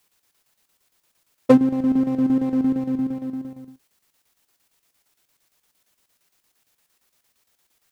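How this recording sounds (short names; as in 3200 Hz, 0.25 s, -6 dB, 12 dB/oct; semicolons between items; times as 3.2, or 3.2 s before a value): a quantiser's noise floor 12-bit, dither triangular; chopped level 8.7 Hz, depth 60%, duty 70%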